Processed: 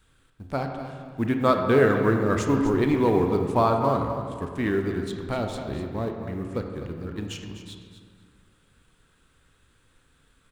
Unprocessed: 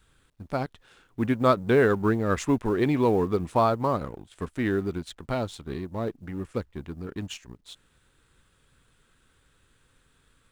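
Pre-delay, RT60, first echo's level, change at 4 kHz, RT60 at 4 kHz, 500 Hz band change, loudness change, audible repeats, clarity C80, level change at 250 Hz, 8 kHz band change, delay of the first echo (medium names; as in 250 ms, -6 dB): 26 ms, 2.0 s, -11.5 dB, +1.0 dB, 1.1 s, +2.0 dB, +2.0 dB, 2, 5.5 dB, +2.0 dB, +0.5 dB, 251 ms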